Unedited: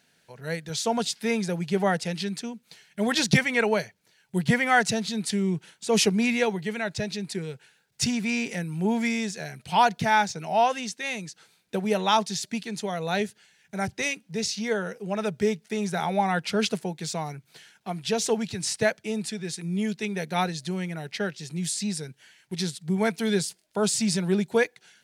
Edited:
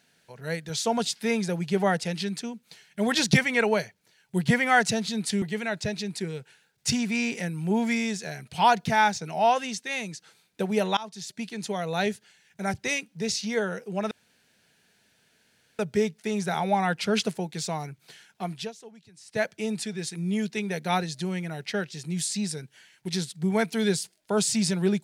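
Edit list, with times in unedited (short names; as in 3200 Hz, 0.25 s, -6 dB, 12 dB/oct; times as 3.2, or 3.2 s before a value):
5.42–6.56 cut
12.11–12.83 fade in, from -22.5 dB
15.25 insert room tone 1.68 s
17.97–18.94 dip -22 dB, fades 0.22 s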